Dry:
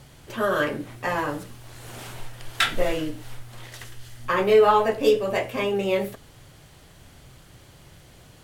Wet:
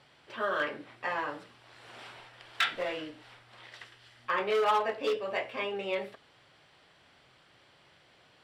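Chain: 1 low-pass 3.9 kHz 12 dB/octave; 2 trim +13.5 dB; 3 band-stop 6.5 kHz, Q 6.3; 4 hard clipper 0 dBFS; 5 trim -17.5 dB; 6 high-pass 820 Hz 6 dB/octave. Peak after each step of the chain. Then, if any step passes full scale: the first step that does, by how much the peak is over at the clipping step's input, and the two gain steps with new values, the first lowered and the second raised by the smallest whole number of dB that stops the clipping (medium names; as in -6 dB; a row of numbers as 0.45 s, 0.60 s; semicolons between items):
-7.0 dBFS, +6.5 dBFS, +6.5 dBFS, 0.0 dBFS, -17.5 dBFS, -15.5 dBFS; step 2, 6.5 dB; step 2 +6.5 dB, step 5 -10.5 dB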